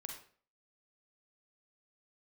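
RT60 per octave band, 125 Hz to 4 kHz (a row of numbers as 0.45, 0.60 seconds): 0.45, 0.45, 0.50, 0.45, 0.40, 0.35 seconds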